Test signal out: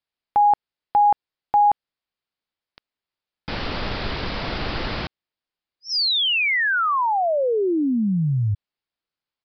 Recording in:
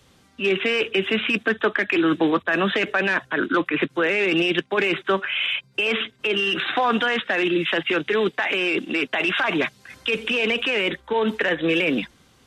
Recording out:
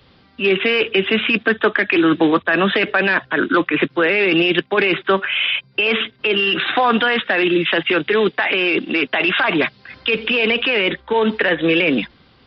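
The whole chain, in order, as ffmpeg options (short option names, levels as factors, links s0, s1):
-af "aresample=11025,aresample=44100,volume=1.78"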